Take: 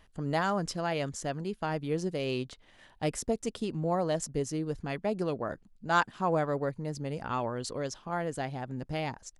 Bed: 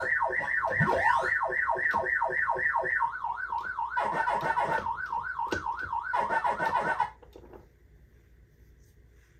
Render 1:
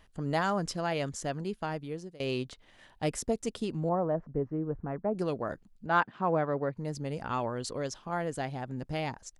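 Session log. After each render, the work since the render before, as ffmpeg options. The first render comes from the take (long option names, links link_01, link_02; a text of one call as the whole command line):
ffmpeg -i in.wav -filter_complex "[0:a]asettb=1/sr,asplit=3[link_01][link_02][link_03];[link_01]atrim=end=3.894[link_04];[link_02]atrim=start=3.89:end=5.15,asetpts=PTS-STARTPTS,afade=type=in:duration=0.004:curve=qsin,afade=type=out:start_time=1.256:duration=0.004:curve=qsin,lowpass=frequency=1400:width=0.5412,lowpass=frequency=1400:width=1.3066[link_05];[link_03]atrim=start=5.146[link_06];[link_04][link_05]acrossfade=duration=0.004:curve1=hsin:curve2=qsin[link_07];[link_07][link_06]acrossfade=duration=0.004:curve1=qsin:curve2=hsin,asettb=1/sr,asplit=3[link_08][link_09][link_10];[link_08]atrim=end=5.864[link_11];[link_09]atrim=start=5.86:end=6.77,asetpts=PTS-STARTPTS,afade=type=in:duration=0.004:curve=qsin,afade=type=out:start_time=0.906:duration=0.004:curve=qsin,highpass=100,lowpass=2600[link_12];[link_10]atrim=start=6.766[link_13];[link_11][link_12]acrossfade=duration=0.004:curve1=hsin:curve2=qsin[link_14];[link_14][link_13]acrossfade=duration=0.004:curve1=qsin:curve2=hsin,asplit=2[link_15][link_16];[link_15]atrim=end=2.2,asetpts=PTS-STARTPTS,afade=type=out:start_time=1.52:duration=0.68:silence=0.0891251[link_17];[link_16]atrim=start=2.2,asetpts=PTS-STARTPTS,afade=type=in:duration=0.004:curve=hsin:silence=0.0891251[link_18];[link_17][link_18]concat=n=2:v=0:a=1" out.wav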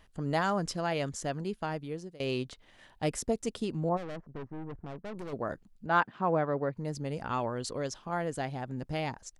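ffmpeg -i in.wav -filter_complex "[0:a]asplit=3[link_01][link_02][link_03];[link_01]afade=type=out:start_time=3.96:duration=0.02[link_04];[link_02]aeval=exprs='(tanh(79.4*val(0)+0.75)-tanh(0.75))/79.4':channel_layout=same,afade=type=in:start_time=3.96:duration=0.02,afade=type=out:start_time=5.32:duration=0.02[link_05];[link_03]afade=type=in:start_time=5.32:duration=0.02[link_06];[link_04][link_05][link_06]amix=inputs=3:normalize=0" out.wav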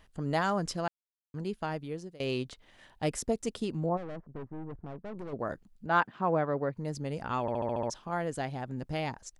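ffmpeg -i in.wav -filter_complex "[0:a]asettb=1/sr,asplit=3[link_01][link_02][link_03];[link_01]atrim=end=3.864[link_04];[link_02]atrim=start=3.86:end=5.39,asetpts=PTS-STARTPTS,afade=type=in:duration=0.004:curve=qsin,afade=type=out:start_time=1.526:duration=0.004:curve=qsin,highshelf=frequency=2600:gain=-12[link_05];[link_03]atrim=start=5.386[link_06];[link_04][link_05]acrossfade=duration=0.004:curve1=hsin:curve2=qsin[link_07];[link_07][link_06]acrossfade=duration=0.004:curve1=qsin:curve2=hsin,asplit=10[link_08][link_09][link_10][link_11][link_12][link_13][link_14][link_15][link_16][link_17];[link_08]atrim=end=0.88,asetpts=PTS-STARTPTS,afade=type=out:start_time=0.876:duration=0.004:curve=hsin[link_18];[link_09]atrim=start=0.88:end=1.34,asetpts=PTS-STARTPTS,volume=0[link_19];[link_10]atrim=start=1.34:end=7.482,asetpts=PTS-STARTPTS,afade=type=in:duration=0.004:curve=hsin[link_20];[link_11]atrim=start=7.408:end=7.482[link_21];[link_12]atrim=start=7.408:end=7.482[link_22];[link_13]atrim=start=7.408:end=7.482[link_23];[link_14]atrim=start=7.408:end=7.482[link_24];[link_15]atrim=start=7.408:end=7.482[link_25];[link_16]atrim=start=7.408:end=7.482[link_26];[link_17]atrim=start=7.898[link_27];[link_18][link_19][link_20]concat=n=3:v=0:a=1[link_28];[link_28][link_21]acrossfade=duration=0.004:curve1=hsin:curve2=hsin[link_29];[link_29][link_22]acrossfade=duration=0.004:curve1=hsin:curve2=hsin[link_30];[link_30][link_23]acrossfade=duration=0.004:curve1=hsin:curve2=hsin[link_31];[link_31][link_24]acrossfade=duration=0.004:curve1=hsin:curve2=hsin[link_32];[link_32][link_25]acrossfade=duration=0.004:curve1=hsin:curve2=hsin[link_33];[link_33][link_26]acrossfade=duration=0.004:curve1=hsin:curve2=hsin[link_34];[link_34][link_27]acrossfade=duration=0.004:curve1=hsin:curve2=hsin" out.wav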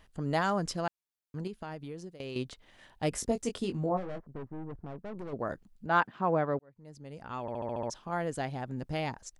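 ffmpeg -i in.wav -filter_complex "[0:a]asettb=1/sr,asplit=3[link_01][link_02][link_03];[link_01]atrim=end=1.474[link_04];[link_02]atrim=start=1.47:end=2.36,asetpts=PTS-STARTPTS,afade=type=in:duration=0.004:curve=qsin,afade=type=out:start_time=0.886:duration=0.004:curve=qsin,acompressor=threshold=-37dB:ratio=4:attack=3.2:release=140:knee=1:detection=peak[link_05];[link_03]atrim=start=2.356[link_06];[link_04][link_05]acrossfade=duration=0.004:curve1=hsin:curve2=qsin[link_07];[link_07][link_06]acrossfade=duration=0.004:curve1=qsin:curve2=hsin,asettb=1/sr,asplit=3[link_08][link_09][link_10];[link_08]atrim=end=3.104[link_11];[link_09]atrim=start=3.1:end=4.2,asetpts=PTS-STARTPTS,afade=type=in:duration=0.004:curve=qsin,afade=type=out:start_time=1.096:duration=0.004:curve=qsin,asplit=2[link_12][link_13];[link_13]adelay=21,volume=-6.5dB[link_14];[link_12][link_14]amix=inputs=2:normalize=0,atrim=end_sample=48510[link_15];[link_10]atrim=start=4.196[link_16];[link_11][link_15]acrossfade=duration=0.004:curve1=hsin:curve2=qsin[link_17];[link_17][link_16]acrossfade=duration=0.004:curve1=qsin:curve2=hsin,asplit=2[link_18][link_19];[link_18]atrim=end=6.59,asetpts=PTS-STARTPTS,afade=type=out:start_time=6.586:duration=0.004:curve=hsin[link_20];[link_19]atrim=start=6.59,asetpts=PTS-STARTPTS,afade=type=in:duration=1.63[link_21];[link_20][link_21]concat=n=2:v=0:a=1" out.wav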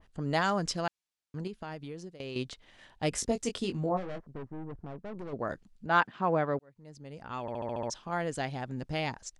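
ffmpeg -i in.wav -af "lowpass=8300,adynamicequalizer=threshold=0.00562:dfrequency=1700:dqfactor=0.7:tfrequency=1700:tqfactor=0.7:attack=5:release=100:ratio=0.375:range=2.5:mode=boostabove:tftype=highshelf" out.wav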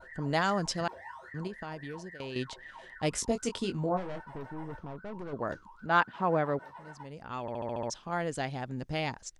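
ffmpeg -i in.wav -i bed.wav -filter_complex "[1:a]volume=-21.5dB[link_01];[0:a][link_01]amix=inputs=2:normalize=0" out.wav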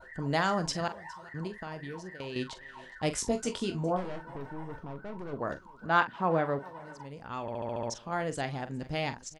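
ffmpeg -i in.wav -filter_complex "[0:a]asplit=2[link_01][link_02];[link_02]adelay=43,volume=-11.5dB[link_03];[link_01][link_03]amix=inputs=2:normalize=0,aecho=1:1:411:0.0841" out.wav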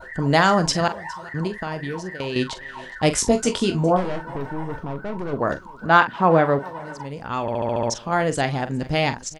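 ffmpeg -i in.wav -af "volume=11.5dB,alimiter=limit=-3dB:level=0:latency=1" out.wav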